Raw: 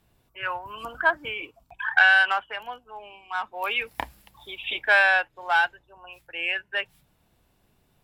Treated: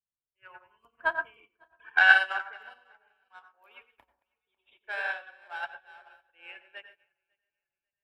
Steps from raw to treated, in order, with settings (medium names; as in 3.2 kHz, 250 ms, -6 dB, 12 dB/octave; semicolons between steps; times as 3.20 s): backward echo that repeats 274 ms, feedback 58%, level -9.5 dB; 3.39–5.63 s: flange 2 Hz, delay 2.1 ms, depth 2.6 ms, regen -69%; reverberation RT60 0.35 s, pre-delay 82 ms, DRR 3.5 dB; upward expansion 2.5:1, over -41 dBFS